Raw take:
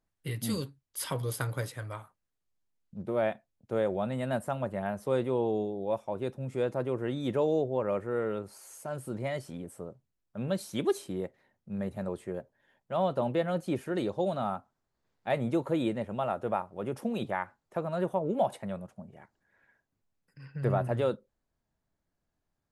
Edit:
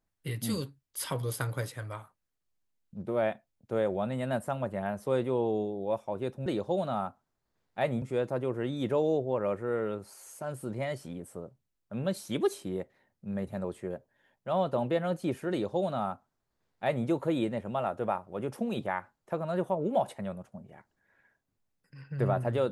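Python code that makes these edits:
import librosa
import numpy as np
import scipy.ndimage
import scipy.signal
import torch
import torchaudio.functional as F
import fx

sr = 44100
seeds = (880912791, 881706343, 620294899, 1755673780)

y = fx.edit(x, sr, fx.duplicate(start_s=13.95, length_s=1.56, to_s=6.46), tone=tone)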